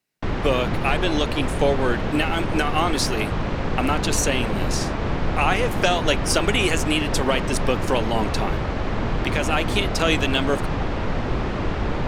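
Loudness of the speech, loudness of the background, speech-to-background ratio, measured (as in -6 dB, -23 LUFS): -24.0 LUFS, -26.0 LUFS, 2.0 dB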